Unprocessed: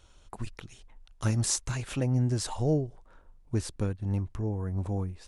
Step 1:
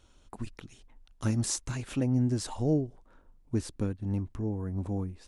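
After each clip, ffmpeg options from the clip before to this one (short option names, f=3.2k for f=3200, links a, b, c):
-af "equalizer=f=260:t=o:w=0.9:g=7.5,volume=-3.5dB"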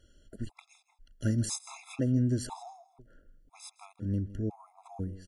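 -af "aecho=1:1:161:0.141,afftfilt=real='re*gt(sin(2*PI*1*pts/sr)*(1-2*mod(floor(b*sr/1024/680),2)),0)':imag='im*gt(sin(2*PI*1*pts/sr)*(1-2*mod(floor(b*sr/1024/680),2)),0)':win_size=1024:overlap=0.75"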